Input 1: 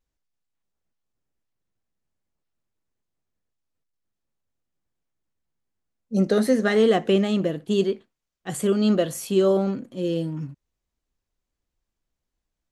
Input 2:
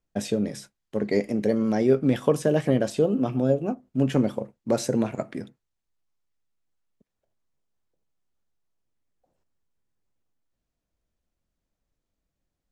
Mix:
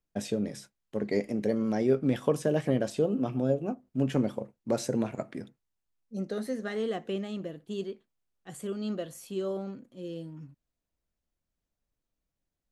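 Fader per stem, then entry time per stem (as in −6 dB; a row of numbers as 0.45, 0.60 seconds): −13.5, −5.0 decibels; 0.00, 0.00 seconds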